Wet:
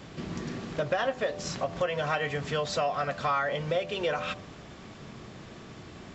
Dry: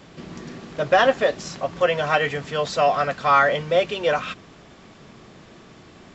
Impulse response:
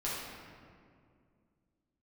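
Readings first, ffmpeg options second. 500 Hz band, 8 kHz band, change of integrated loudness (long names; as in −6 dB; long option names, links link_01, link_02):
−9.0 dB, can't be measured, −9.5 dB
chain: -af "equalizer=frequency=89:width_type=o:width=1.6:gain=5,bandreject=frequency=84.23:width_type=h:width=4,bandreject=frequency=168.46:width_type=h:width=4,bandreject=frequency=252.69:width_type=h:width=4,bandreject=frequency=336.92:width_type=h:width=4,bandreject=frequency=421.15:width_type=h:width=4,bandreject=frequency=505.38:width_type=h:width=4,bandreject=frequency=589.61:width_type=h:width=4,bandreject=frequency=673.84:width_type=h:width=4,bandreject=frequency=758.07:width_type=h:width=4,bandreject=frequency=842.3:width_type=h:width=4,bandreject=frequency=926.53:width_type=h:width=4,bandreject=frequency=1010.76:width_type=h:width=4,bandreject=frequency=1094.99:width_type=h:width=4,bandreject=frequency=1179.22:width_type=h:width=4,acompressor=threshold=-27dB:ratio=4"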